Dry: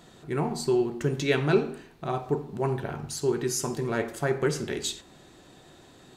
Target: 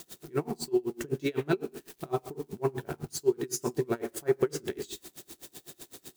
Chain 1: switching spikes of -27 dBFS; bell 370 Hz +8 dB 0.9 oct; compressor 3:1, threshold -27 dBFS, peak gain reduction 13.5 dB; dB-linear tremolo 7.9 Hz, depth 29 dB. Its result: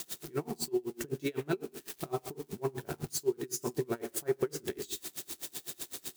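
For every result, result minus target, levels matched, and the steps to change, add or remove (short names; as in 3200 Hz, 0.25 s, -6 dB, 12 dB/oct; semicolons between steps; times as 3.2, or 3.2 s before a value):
compressor: peak gain reduction +5 dB; switching spikes: distortion +7 dB
change: compressor 3:1, threshold -19.5 dBFS, peak gain reduction 8.5 dB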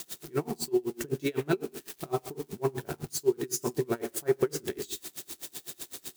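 switching spikes: distortion +7 dB
change: switching spikes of -34 dBFS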